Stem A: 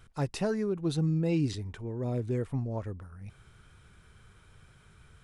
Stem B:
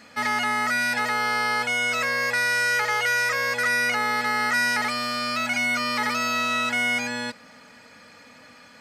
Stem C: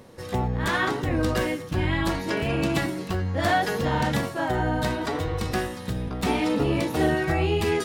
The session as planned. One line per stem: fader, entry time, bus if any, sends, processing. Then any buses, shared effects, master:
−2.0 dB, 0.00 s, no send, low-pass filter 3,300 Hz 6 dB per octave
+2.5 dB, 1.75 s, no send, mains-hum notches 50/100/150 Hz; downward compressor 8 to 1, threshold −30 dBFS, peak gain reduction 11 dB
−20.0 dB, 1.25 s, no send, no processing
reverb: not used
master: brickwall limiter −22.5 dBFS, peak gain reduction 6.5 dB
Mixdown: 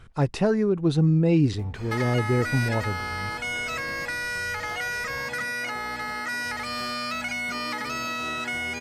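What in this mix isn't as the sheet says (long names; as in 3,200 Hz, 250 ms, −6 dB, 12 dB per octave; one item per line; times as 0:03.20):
stem A −2.0 dB → +8.0 dB
master: missing brickwall limiter −22.5 dBFS, peak gain reduction 6.5 dB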